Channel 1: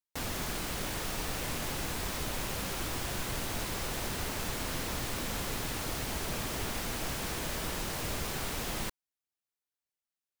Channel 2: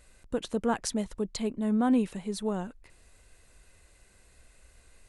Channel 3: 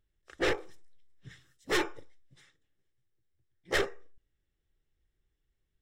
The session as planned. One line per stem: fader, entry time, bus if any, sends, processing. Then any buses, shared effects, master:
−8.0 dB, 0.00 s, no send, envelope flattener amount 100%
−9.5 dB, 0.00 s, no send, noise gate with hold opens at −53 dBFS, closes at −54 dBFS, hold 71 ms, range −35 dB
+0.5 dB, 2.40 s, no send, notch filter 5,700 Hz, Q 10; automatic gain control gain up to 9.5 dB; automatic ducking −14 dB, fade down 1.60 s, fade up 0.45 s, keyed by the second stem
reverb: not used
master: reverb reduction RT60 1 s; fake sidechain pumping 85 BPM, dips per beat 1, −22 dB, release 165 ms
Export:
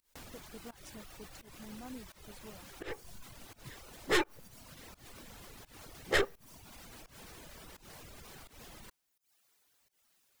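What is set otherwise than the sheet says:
stem 1 −8.0 dB → −17.0 dB
stem 2 −9.5 dB → −21.0 dB
stem 3: missing automatic gain control gain up to 9.5 dB

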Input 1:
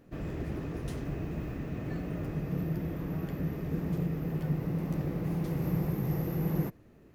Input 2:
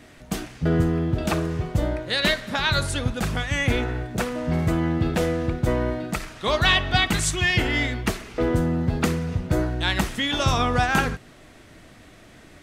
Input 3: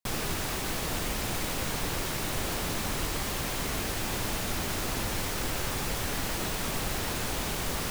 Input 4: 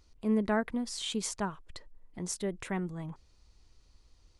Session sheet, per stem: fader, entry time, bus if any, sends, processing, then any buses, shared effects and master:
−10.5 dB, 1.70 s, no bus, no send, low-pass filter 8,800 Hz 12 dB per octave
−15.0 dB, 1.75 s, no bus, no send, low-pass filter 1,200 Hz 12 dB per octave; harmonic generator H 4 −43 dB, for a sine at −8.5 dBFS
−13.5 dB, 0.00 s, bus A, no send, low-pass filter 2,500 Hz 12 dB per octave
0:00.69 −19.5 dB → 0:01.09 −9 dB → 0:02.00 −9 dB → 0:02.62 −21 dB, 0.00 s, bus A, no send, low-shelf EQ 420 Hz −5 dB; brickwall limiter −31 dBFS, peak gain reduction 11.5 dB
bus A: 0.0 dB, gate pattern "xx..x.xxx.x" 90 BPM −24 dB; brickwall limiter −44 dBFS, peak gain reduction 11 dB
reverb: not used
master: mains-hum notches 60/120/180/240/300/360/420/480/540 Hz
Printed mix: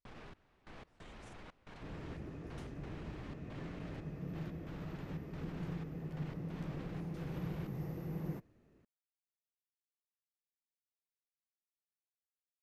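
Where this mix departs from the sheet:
stem 2: muted
stem 4 −19.5 dB → −31.0 dB
master: missing mains-hum notches 60/120/180/240/300/360/420/480/540 Hz

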